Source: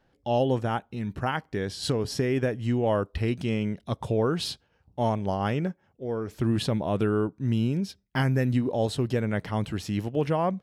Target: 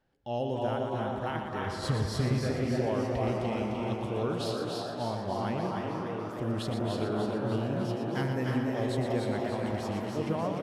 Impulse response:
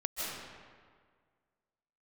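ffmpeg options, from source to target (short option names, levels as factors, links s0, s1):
-filter_complex "[0:a]asplit=3[s0][s1][s2];[s0]afade=t=out:st=1.66:d=0.02[s3];[s1]asubboost=boost=9.5:cutoff=140,afade=t=in:st=1.66:d=0.02,afade=t=out:st=2.39:d=0.02[s4];[s2]afade=t=in:st=2.39:d=0.02[s5];[s3][s4][s5]amix=inputs=3:normalize=0,asplit=9[s6][s7][s8][s9][s10][s11][s12][s13][s14];[s7]adelay=299,afreqshift=130,volume=0.531[s15];[s8]adelay=598,afreqshift=260,volume=0.313[s16];[s9]adelay=897,afreqshift=390,volume=0.184[s17];[s10]adelay=1196,afreqshift=520,volume=0.11[s18];[s11]adelay=1495,afreqshift=650,volume=0.0646[s19];[s12]adelay=1794,afreqshift=780,volume=0.038[s20];[s13]adelay=2093,afreqshift=910,volume=0.0224[s21];[s14]adelay=2392,afreqshift=1040,volume=0.0132[s22];[s6][s15][s16][s17][s18][s19][s20][s21][s22]amix=inputs=9:normalize=0,asplit=2[s23][s24];[1:a]atrim=start_sample=2205,adelay=118[s25];[s24][s25]afir=irnorm=-1:irlink=0,volume=0.531[s26];[s23][s26]amix=inputs=2:normalize=0,volume=0.376"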